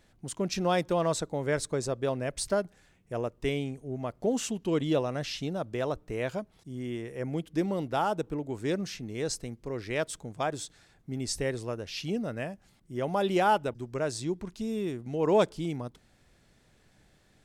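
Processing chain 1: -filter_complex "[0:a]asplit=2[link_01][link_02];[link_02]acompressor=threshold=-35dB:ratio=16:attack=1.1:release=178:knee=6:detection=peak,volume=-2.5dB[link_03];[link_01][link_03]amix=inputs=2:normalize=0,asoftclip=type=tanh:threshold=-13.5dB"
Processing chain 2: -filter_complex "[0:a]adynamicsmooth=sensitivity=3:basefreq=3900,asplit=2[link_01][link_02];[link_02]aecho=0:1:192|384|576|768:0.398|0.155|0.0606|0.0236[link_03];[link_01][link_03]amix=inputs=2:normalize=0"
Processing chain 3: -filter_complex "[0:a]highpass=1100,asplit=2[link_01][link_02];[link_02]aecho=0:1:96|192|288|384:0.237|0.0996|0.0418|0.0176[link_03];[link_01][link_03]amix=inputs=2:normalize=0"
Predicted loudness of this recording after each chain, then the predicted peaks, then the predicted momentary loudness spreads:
−30.5, −31.0, −38.5 LKFS; −15.0, −12.0, −18.0 dBFS; 9, 11, 14 LU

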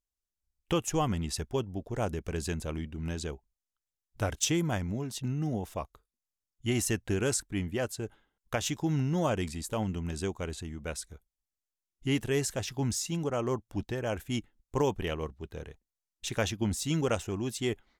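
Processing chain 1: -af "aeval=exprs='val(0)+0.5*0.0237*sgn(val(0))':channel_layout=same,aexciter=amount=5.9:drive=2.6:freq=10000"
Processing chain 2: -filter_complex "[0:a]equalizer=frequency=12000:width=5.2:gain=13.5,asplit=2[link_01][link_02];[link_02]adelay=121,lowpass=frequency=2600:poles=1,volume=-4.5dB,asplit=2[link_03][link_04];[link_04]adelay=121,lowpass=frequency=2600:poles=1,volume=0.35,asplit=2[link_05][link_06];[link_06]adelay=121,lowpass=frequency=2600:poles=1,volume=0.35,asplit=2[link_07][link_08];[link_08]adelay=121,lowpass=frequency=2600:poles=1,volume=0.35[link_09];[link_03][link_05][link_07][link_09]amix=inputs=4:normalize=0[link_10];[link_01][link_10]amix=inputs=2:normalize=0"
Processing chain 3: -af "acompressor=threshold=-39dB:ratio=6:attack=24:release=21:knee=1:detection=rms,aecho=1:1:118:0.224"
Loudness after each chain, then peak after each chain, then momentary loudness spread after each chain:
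−28.0, −31.5, −39.5 LKFS; −11.0, −14.0, −23.5 dBFS; 6, 10, 7 LU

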